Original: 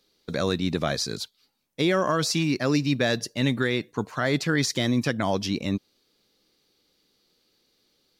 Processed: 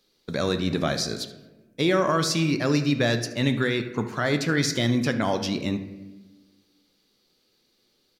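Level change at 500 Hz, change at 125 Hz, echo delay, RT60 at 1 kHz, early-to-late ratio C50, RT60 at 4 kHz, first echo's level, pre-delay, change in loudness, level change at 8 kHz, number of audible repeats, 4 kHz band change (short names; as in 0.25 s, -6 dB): +1.0 dB, +1.5 dB, 76 ms, 1.0 s, 10.0 dB, 0.70 s, -17.0 dB, 5 ms, +1.0 dB, +0.5 dB, 1, +0.5 dB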